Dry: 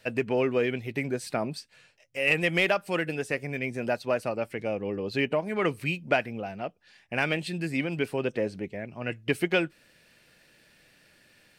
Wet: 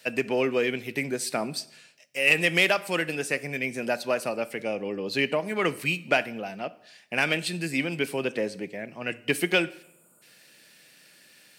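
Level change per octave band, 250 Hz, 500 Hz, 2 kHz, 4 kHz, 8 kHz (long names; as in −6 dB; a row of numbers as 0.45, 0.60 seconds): 0.0, +0.5, +3.5, +5.5, +9.5 decibels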